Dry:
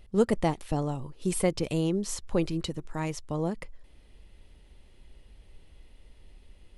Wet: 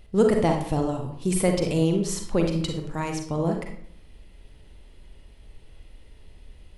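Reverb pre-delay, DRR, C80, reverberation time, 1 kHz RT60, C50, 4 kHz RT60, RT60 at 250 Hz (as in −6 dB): 37 ms, 2.5 dB, 9.5 dB, 0.60 s, 0.55 s, 5.0 dB, 0.40 s, 0.75 s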